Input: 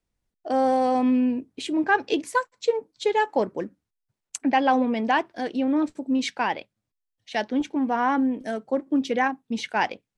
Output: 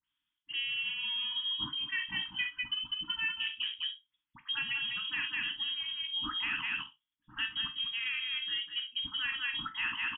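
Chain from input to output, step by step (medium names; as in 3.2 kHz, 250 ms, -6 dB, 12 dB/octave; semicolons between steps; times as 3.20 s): high-pass 150 Hz; multi-tap echo 50/67/200/266 ms -13/-19/-6/-19.5 dB; reverse; compression 5:1, threshold -30 dBFS, peak gain reduction 14 dB; reverse; frequency inversion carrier 3.5 kHz; Chebyshev band-stop 310–890 Hz, order 4; peaking EQ 310 Hz +2 dB; phase dispersion highs, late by 52 ms, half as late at 1.7 kHz; low-pass that closes with the level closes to 2.3 kHz, closed at -28.5 dBFS; on a send at -7 dB: reverberation RT60 0.15 s, pre-delay 5 ms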